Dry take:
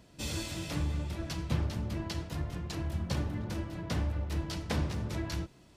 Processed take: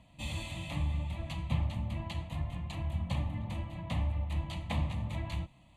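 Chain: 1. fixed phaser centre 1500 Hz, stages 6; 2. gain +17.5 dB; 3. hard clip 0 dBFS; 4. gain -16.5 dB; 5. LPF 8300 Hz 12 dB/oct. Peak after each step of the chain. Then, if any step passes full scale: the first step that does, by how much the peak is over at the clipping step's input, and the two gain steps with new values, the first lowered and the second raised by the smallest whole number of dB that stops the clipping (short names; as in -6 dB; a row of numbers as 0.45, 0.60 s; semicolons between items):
-20.0, -2.5, -2.5, -19.0, -19.0 dBFS; no overload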